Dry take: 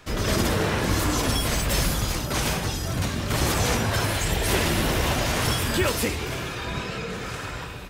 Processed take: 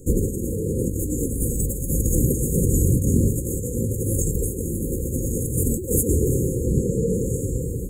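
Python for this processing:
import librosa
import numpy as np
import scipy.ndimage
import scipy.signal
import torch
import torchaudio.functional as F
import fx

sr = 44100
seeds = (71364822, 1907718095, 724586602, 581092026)

y = fx.over_compress(x, sr, threshold_db=-27.0, ratio=-0.5)
y = fx.brickwall_bandstop(y, sr, low_hz=550.0, high_hz=6500.0)
y = F.gain(torch.from_numpy(y), 8.0).numpy()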